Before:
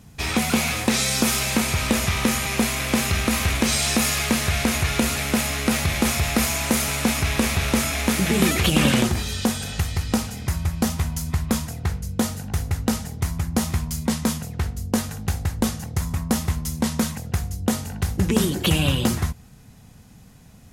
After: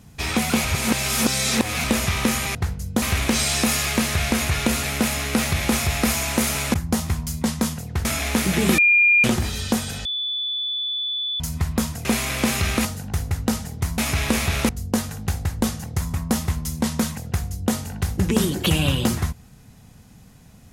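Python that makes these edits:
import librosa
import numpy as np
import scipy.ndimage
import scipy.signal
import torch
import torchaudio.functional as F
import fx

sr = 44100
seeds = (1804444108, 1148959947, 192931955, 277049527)

y = fx.edit(x, sr, fx.reverse_span(start_s=0.65, length_s=1.19),
    fx.swap(start_s=2.55, length_s=0.8, other_s=11.78, other_length_s=0.47),
    fx.swap(start_s=7.07, length_s=0.71, other_s=13.38, other_length_s=1.31),
    fx.bleep(start_s=8.51, length_s=0.46, hz=2410.0, db=-12.0),
    fx.bleep(start_s=9.78, length_s=1.35, hz=3470.0, db=-23.0), tone=tone)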